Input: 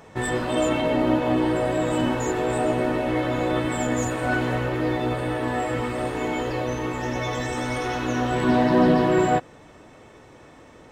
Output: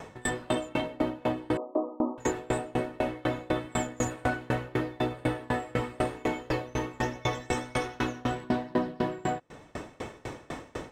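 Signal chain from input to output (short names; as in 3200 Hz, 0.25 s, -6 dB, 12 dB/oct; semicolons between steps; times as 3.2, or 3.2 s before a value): AGC gain up to 8 dB; 1.57–2.18 brick-wall FIR band-pass 200–1300 Hz; compressor 5:1, threshold -30 dBFS, peak gain reduction 19 dB; dB-ramp tremolo decaying 4 Hz, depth 29 dB; gain +8 dB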